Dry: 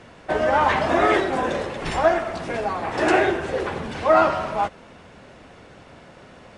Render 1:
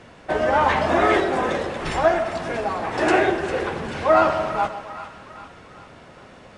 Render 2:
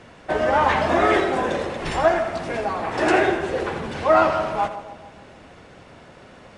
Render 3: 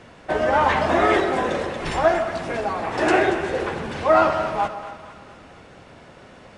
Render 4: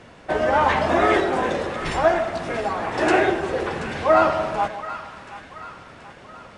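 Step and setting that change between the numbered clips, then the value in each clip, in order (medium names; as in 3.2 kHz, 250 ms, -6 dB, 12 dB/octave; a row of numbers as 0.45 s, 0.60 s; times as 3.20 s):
two-band feedback delay, highs: 401 ms, 82 ms, 232 ms, 730 ms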